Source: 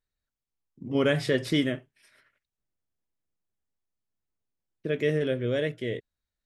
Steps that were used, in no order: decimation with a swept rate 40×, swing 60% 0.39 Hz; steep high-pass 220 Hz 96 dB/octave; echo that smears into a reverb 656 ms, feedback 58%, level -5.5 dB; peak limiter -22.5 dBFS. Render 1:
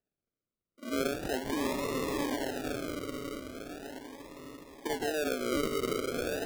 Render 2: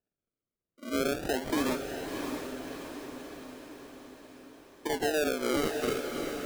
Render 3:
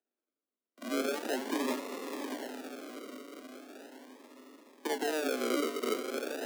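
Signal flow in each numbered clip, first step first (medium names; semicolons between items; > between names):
echo that smears into a reverb > peak limiter > steep high-pass > decimation with a swept rate; steep high-pass > decimation with a swept rate > peak limiter > echo that smears into a reverb; peak limiter > echo that smears into a reverb > decimation with a swept rate > steep high-pass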